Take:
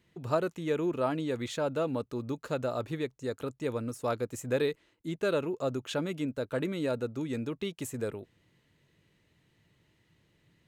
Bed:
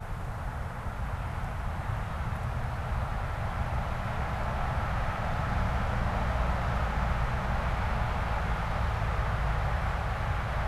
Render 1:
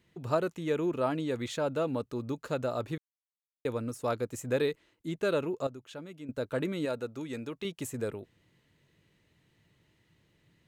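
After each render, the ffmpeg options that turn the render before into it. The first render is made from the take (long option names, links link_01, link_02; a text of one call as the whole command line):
ffmpeg -i in.wav -filter_complex "[0:a]asettb=1/sr,asplit=3[link_01][link_02][link_03];[link_01]atrim=end=6.854[link_04];[link_02]atrim=start=6.85:end=7.65,asetpts=PTS-STARTPTS,afade=type=in:duration=0.004:curve=qsin,afade=type=out:start_time=0.796:duration=0.004:curve=qsin,lowshelf=frequency=340:gain=-7.5[link_05];[link_03]atrim=start=7.646[link_06];[link_04][link_05]acrossfade=duration=0.004:curve1=hsin:curve2=qsin[link_07];[link_07][link_06]acrossfade=duration=0.004:curve1=qsin:curve2=hsin,asplit=5[link_08][link_09][link_10][link_11][link_12];[link_08]atrim=end=2.98,asetpts=PTS-STARTPTS,afade=type=out:start_time=2.976:duration=0.004:curve=hsin[link_13];[link_09]atrim=start=2.98:end=3.65,asetpts=PTS-STARTPTS,volume=0[link_14];[link_10]atrim=start=3.65:end=5.672,asetpts=PTS-STARTPTS,afade=type=in:duration=0.004:curve=hsin[link_15];[link_11]atrim=start=5.668:end=6.292,asetpts=PTS-STARTPTS,volume=-11.5dB[link_16];[link_12]atrim=start=6.288[link_17];[link_13][link_14][link_15]concat=n=3:v=0:a=1[link_18];[link_18][link_16]acrossfade=duration=0.004:curve1=hsin:curve2=hsin[link_19];[link_19][link_17]acrossfade=duration=0.004:curve1=hsin:curve2=hsin" out.wav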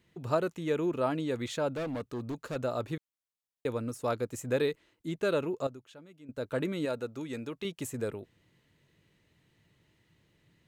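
ffmpeg -i in.wav -filter_complex "[0:a]asettb=1/sr,asplit=3[link_01][link_02][link_03];[link_01]atrim=end=1.714[link_04];[link_02]atrim=start=1.71:end=2.56,asetpts=PTS-STARTPTS,afade=type=in:duration=0.004:curve=qsin,afade=type=out:start_time=0.846:duration=0.004:curve=qsin,volume=32dB,asoftclip=hard,volume=-32dB[link_05];[link_03]atrim=start=2.556[link_06];[link_04][link_05]acrossfade=duration=0.004:curve1=hsin:curve2=qsin[link_07];[link_07][link_06]acrossfade=duration=0.004:curve1=qsin:curve2=hsin,asplit=3[link_08][link_09][link_10];[link_08]atrim=end=5.95,asetpts=PTS-STARTPTS,afade=type=out:start_time=5.68:duration=0.27:silence=0.375837[link_11];[link_09]atrim=start=5.95:end=6.23,asetpts=PTS-STARTPTS,volume=-8.5dB[link_12];[link_10]atrim=start=6.23,asetpts=PTS-STARTPTS,afade=type=in:duration=0.27:silence=0.375837[link_13];[link_11][link_12][link_13]concat=n=3:v=0:a=1" out.wav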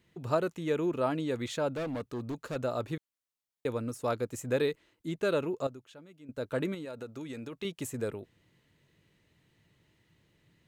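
ffmpeg -i in.wav -filter_complex "[0:a]asettb=1/sr,asplit=3[link_01][link_02][link_03];[link_01]atrim=end=6.744[link_04];[link_02]atrim=start=6.74:end=7.53,asetpts=PTS-STARTPTS,afade=type=in:duration=0.004:curve=qsin,afade=type=out:start_time=0.786:duration=0.004:curve=qsin,acompressor=threshold=-36dB:ratio=12:attack=3.2:release=140:knee=1:detection=peak[link_05];[link_03]atrim=start=7.526[link_06];[link_04][link_05]acrossfade=duration=0.004:curve1=hsin:curve2=qsin[link_07];[link_07][link_06]acrossfade=duration=0.004:curve1=qsin:curve2=hsin" out.wav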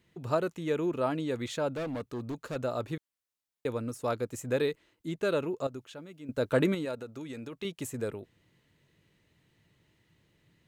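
ffmpeg -i in.wav -filter_complex "[0:a]asplit=3[link_01][link_02][link_03];[link_01]atrim=end=5.742[link_04];[link_02]atrim=start=5.738:end=6.952,asetpts=PTS-STARTPTS,volume=6.5dB[link_05];[link_03]atrim=start=6.948[link_06];[link_04][link_05]acrossfade=duration=0.004:curve1=hsin:curve2=hsin[link_07];[link_07][link_06]acrossfade=duration=0.004:curve1=hsin:curve2=hsin" out.wav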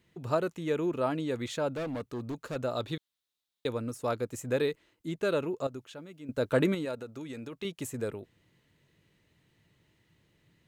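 ffmpeg -i in.wav -filter_complex "[0:a]asettb=1/sr,asplit=3[link_01][link_02][link_03];[link_01]atrim=end=2.764[link_04];[link_02]atrim=start=2.76:end=3.69,asetpts=PTS-STARTPTS,afade=type=in:duration=0.004:curve=qsin,afade=type=out:start_time=0.926:duration=0.004:curve=qsin,equalizer=frequency=3700:width_type=o:width=0.54:gain=12[link_05];[link_03]atrim=start=3.686[link_06];[link_04][link_05]acrossfade=duration=0.004:curve1=hsin:curve2=qsin[link_07];[link_07][link_06]acrossfade=duration=0.004:curve1=qsin:curve2=hsin" out.wav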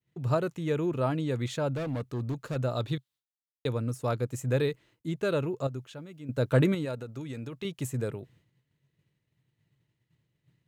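ffmpeg -i in.wav -af "agate=range=-33dB:threshold=-59dB:ratio=3:detection=peak,equalizer=frequency=130:width=2.3:gain=11.5" out.wav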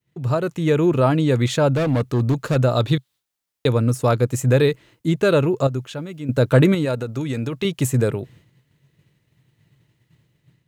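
ffmpeg -i in.wav -filter_complex "[0:a]asplit=2[link_01][link_02];[link_02]alimiter=limit=-23dB:level=0:latency=1:release=358,volume=1dB[link_03];[link_01][link_03]amix=inputs=2:normalize=0,dynaudnorm=framelen=200:gausssize=5:maxgain=7dB" out.wav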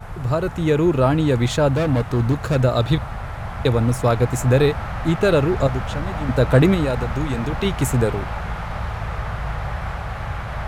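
ffmpeg -i in.wav -i bed.wav -filter_complex "[1:a]volume=3dB[link_01];[0:a][link_01]amix=inputs=2:normalize=0" out.wav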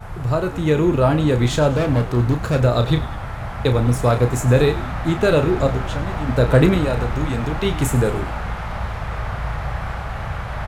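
ffmpeg -i in.wav -filter_complex "[0:a]asplit=2[link_01][link_02];[link_02]adelay=33,volume=-8.5dB[link_03];[link_01][link_03]amix=inputs=2:normalize=0,asplit=6[link_04][link_05][link_06][link_07][link_08][link_09];[link_05]adelay=101,afreqshift=-87,volume=-15dB[link_10];[link_06]adelay=202,afreqshift=-174,volume=-21dB[link_11];[link_07]adelay=303,afreqshift=-261,volume=-27dB[link_12];[link_08]adelay=404,afreqshift=-348,volume=-33.1dB[link_13];[link_09]adelay=505,afreqshift=-435,volume=-39.1dB[link_14];[link_04][link_10][link_11][link_12][link_13][link_14]amix=inputs=6:normalize=0" out.wav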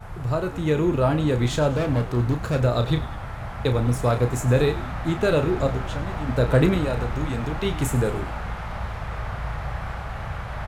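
ffmpeg -i in.wav -af "volume=-4.5dB" out.wav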